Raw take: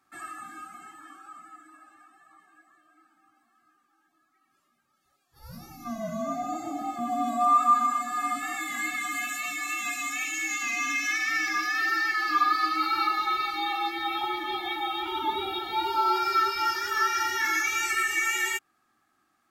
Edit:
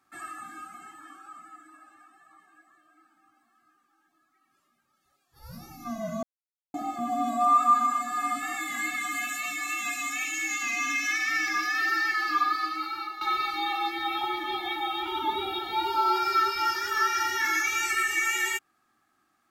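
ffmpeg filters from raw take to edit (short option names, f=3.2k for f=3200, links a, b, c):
-filter_complex "[0:a]asplit=4[a][b][c][d];[a]atrim=end=6.23,asetpts=PTS-STARTPTS,afade=t=out:st=6.226:d=0.004:c=hsin[e];[b]atrim=start=6.23:end=6.74,asetpts=PTS-STARTPTS,volume=0[f];[c]atrim=start=6.74:end=13.21,asetpts=PTS-STARTPTS,afade=t=in:d=0.004:c=hsin,afade=t=out:st=5.41:d=1.06:silence=0.211349[g];[d]atrim=start=13.21,asetpts=PTS-STARTPTS,afade=t=in:d=0.004:c=hsin:silence=0.211349[h];[e][f][g][h]concat=n=4:v=0:a=1"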